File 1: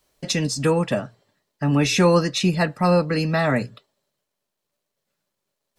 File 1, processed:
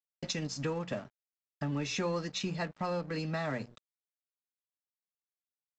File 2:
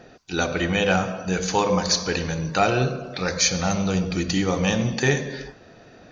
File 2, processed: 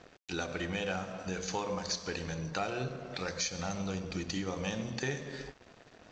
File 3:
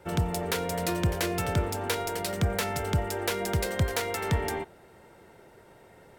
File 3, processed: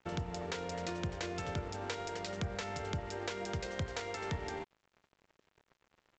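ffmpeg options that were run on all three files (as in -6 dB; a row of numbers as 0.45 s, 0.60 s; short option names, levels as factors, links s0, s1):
-af "bandreject=f=60:t=h:w=6,bandreject=f=120:t=h:w=6,bandreject=f=180:t=h:w=6,bandreject=f=240:t=h:w=6,acompressor=threshold=0.0158:ratio=2.5,aresample=16000,aeval=exprs='sgn(val(0))*max(abs(val(0))-0.00376,0)':c=same,aresample=44100,volume=0.891"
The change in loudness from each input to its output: -15.0 LU, -13.5 LU, -10.5 LU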